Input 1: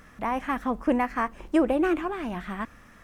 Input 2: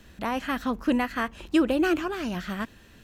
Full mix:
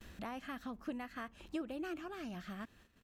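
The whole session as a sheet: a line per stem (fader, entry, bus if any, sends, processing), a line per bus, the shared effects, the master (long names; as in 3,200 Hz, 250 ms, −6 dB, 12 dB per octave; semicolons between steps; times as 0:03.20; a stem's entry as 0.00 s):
−8.0 dB, 0.00 s, no send, output level in coarse steps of 20 dB
−1.0 dB, 1.9 ms, polarity flipped, no send, automatic ducking −6 dB, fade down 0.40 s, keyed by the first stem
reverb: not used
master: noise gate −56 dBFS, range −23 dB; downward compressor 2 to 1, threshold −49 dBFS, peak gain reduction 15 dB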